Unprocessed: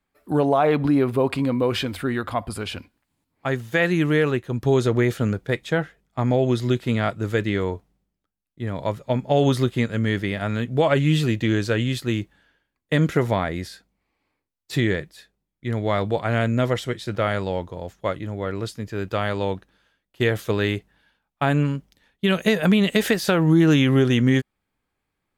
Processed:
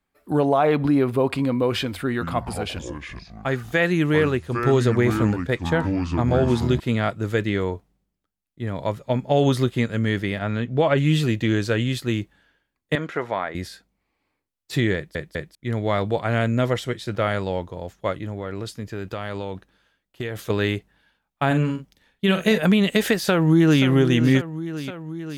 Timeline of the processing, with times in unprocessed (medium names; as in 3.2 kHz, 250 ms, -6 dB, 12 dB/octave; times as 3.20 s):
2.09–6.80 s: ever faster or slower copies 120 ms, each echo -6 st, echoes 2, each echo -6 dB
10.39–10.98 s: distance through air 88 m
12.95–13.55 s: band-pass filter 1.2 kHz, Q 0.67
14.95 s: stutter in place 0.20 s, 3 plays
18.25–20.50 s: compression, threshold -25 dBFS
21.46–22.58 s: doubling 46 ms -8.5 dB
23.17–23.84 s: echo throw 530 ms, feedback 75%, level -11.5 dB